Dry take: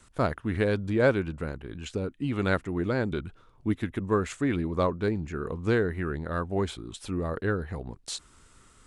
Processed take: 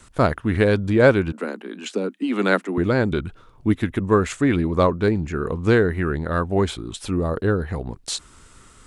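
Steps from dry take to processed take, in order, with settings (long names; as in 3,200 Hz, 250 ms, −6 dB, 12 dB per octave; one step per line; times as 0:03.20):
0:01.32–0:02.78: Butterworth high-pass 190 Hz 96 dB per octave
0:07.16–0:07.60: parametric band 2,000 Hz −8 dB 0.89 octaves
level +8 dB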